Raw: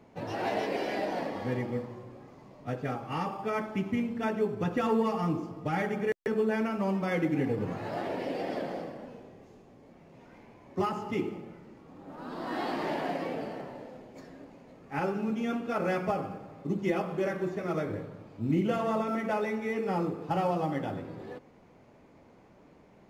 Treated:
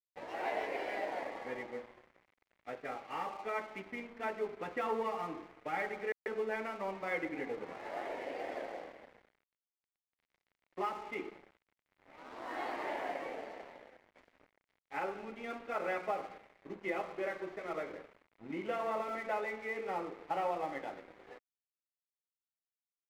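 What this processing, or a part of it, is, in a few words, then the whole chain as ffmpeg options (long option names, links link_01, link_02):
pocket radio on a weak battery: -af "highpass=380,lowpass=3800,equalizer=frequency=830:width_type=o:width=2.3:gain=4,aeval=exprs='sgn(val(0))*max(abs(val(0))-0.00473,0)':channel_layout=same,equalizer=frequency=2100:width_type=o:width=0.38:gain=7,volume=-7.5dB"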